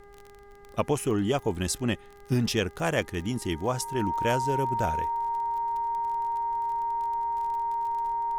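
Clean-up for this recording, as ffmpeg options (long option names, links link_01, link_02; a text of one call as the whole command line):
ffmpeg -i in.wav -af "adeclick=threshold=4,bandreject=frequency=404.5:width_type=h:width=4,bandreject=frequency=809:width_type=h:width=4,bandreject=frequency=1213.5:width_type=h:width=4,bandreject=frequency=1618:width_type=h:width=4,bandreject=frequency=2022.5:width_type=h:width=4,bandreject=frequency=930:width=30,afftdn=noise_reduction=25:noise_floor=-49" out.wav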